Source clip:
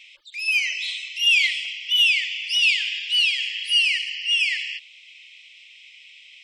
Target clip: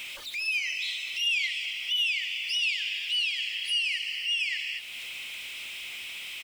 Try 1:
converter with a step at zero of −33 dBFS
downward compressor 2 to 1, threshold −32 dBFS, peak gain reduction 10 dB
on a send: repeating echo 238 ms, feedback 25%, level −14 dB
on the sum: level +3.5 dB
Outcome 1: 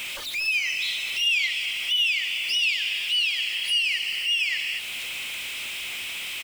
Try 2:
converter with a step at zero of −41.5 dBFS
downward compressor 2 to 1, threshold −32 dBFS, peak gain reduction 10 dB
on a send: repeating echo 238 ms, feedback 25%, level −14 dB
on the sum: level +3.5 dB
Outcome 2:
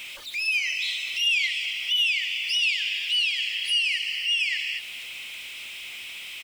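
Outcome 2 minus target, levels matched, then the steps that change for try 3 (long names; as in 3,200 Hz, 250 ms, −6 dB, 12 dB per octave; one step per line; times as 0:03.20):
downward compressor: peak gain reduction −4 dB
change: downward compressor 2 to 1, threshold −40 dBFS, peak gain reduction 14 dB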